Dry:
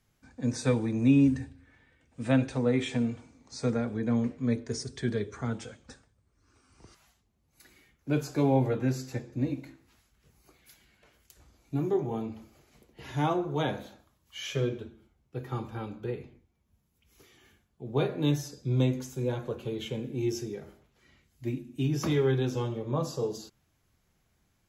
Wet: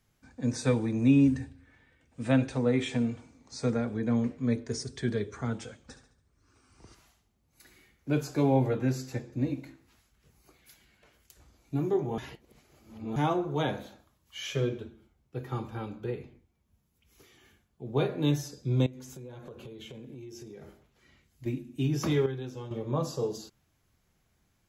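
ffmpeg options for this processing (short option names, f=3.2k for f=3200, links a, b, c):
-filter_complex "[0:a]asettb=1/sr,asplit=3[a][b][c];[a]atrim=end=5.804[d];[b]atrim=start=5.8:end=8.1,asetpts=PTS-STARTPTS,afade=t=in:d=0.004:c=qsin,afade=t=out:st=2.296:d=0.004:c=qsin,aecho=1:1:71|142|213|284|355:0.299|0.128|0.0552|0.0237|0.0102,atrim=end_sample=101430[e];[c]atrim=start=8.096[f];[d][e]acrossfade=d=0.004:c1=hsin:c2=qsin[g];[g][f]acrossfade=d=0.004:c1=qsin:c2=hsin,asettb=1/sr,asplit=3[h][i][j];[h]atrim=end=18.864[k];[i]atrim=start=18.86:end=21.46,asetpts=PTS-STARTPTS,afade=t=in:d=0.004:c=qsin,afade=t=out:st=2.596:d=0.004:c=qsin,acompressor=threshold=-41dB:ratio=10:attack=3.2:release=140:knee=1:detection=peak[l];[j]atrim=start=21.456[m];[k][l]acrossfade=d=0.004:c1=hsin:c2=qsin[n];[n][m]acrossfade=d=0.004:c1=qsin:c2=hsin,asplit=5[o][p][q][r][s];[o]atrim=end=12.182[t];[p]atrim=start=12.178:end=13.162,asetpts=PTS-STARTPTS,areverse[u];[q]atrim=start=13.158:end=22.262[v];[r]atrim=start=22.258:end=22.712,asetpts=PTS-STARTPTS,volume=-9.5dB[w];[s]atrim=start=22.708[x];[t][u]acrossfade=d=0.004:c1=hsin:c2=hsin[y];[y][v]acrossfade=d=0.004:c1=hsin:c2=hsin[z];[z][w]acrossfade=d=0.004:c1=hsin:c2=hsin[aa];[aa][x]acrossfade=d=0.004:c1=hsin:c2=hsin"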